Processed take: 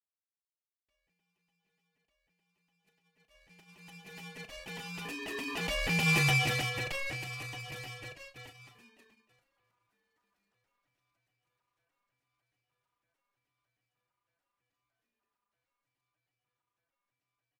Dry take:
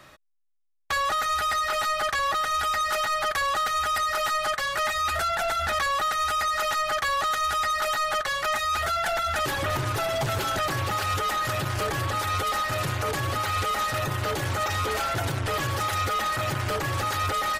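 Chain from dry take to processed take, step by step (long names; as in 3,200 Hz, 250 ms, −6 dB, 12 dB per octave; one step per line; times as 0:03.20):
source passing by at 0:06.21, 7 m/s, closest 1.6 metres
noise gate −46 dBFS, range −29 dB
ring modulation 1,100 Hz
double-tracking delay 36 ms −10.5 dB
level +2.5 dB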